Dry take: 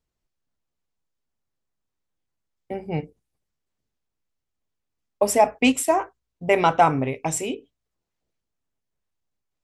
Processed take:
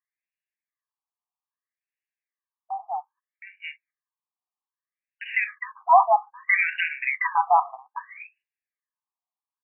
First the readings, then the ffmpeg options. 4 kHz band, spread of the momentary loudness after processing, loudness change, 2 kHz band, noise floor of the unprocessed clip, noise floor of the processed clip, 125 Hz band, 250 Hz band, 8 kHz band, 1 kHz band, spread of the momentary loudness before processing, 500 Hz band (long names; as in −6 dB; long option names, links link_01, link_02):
−8.0 dB, 21 LU, −1.0 dB, +6.0 dB, −82 dBFS, below −85 dBFS, below −40 dB, below −40 dB, below −40 dB, +2.5 dB, 17 LU, −8.0 dB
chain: -filter_complex "[0:a]agate=range=-12dB:threshold=-49dB:ratio=16:detection=peak,highpass=frequency=380:width=0.5412,highpass=frequency=380:width=1.3066,equalizer=frequency=790:width=1.6:gain=-5,aeval=exprs='0.562*(cos(1*acos(clip(val(0)/0.562,-1,1)))-cos(1*PI/2))+0.0447*(cos(5*acos(clip(val(0)/0.562,-1,1)))-cos(5*PI/2))':channel_layout=same,asuperstop=centerf=1400:order=4:qfactor=3.8,asplit=2[link_01][link_02];[link_02]aecho=0:1:717:0.422[link_03];[link_01][link_03]amix=inputs=2:normalize=0,alimiter=level_in=11.5dB:limit=-1dB:release=50:level=0:latency=1,afftfilt=real='re*between(b*sr/1024,930*pow(2100/930,0.5+0.5*sin(2*PI*0.62*pts/sr))/1.41,930*pow(2100/930,0.5+0.5*sin(2*PI*0.62*pts/sr))*1.41)':imag='im*between(b*sr/1024,930*pow(2100/930,0.5+0.5*sin(2*PI*0.62*pts/sr))/1.41,930*pow(2100/930,0.5+0.5*sin(2*PI*0.62*pts/sr))*1.41)':win_size=1024:overlap=0.75"